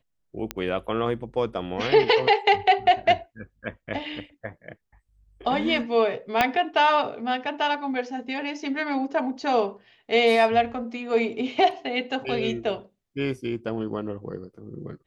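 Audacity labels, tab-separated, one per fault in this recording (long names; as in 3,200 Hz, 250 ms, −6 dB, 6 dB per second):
0.510000	0.510000	click −12 dBFS
6.410000	6.410000	click −6 dBFS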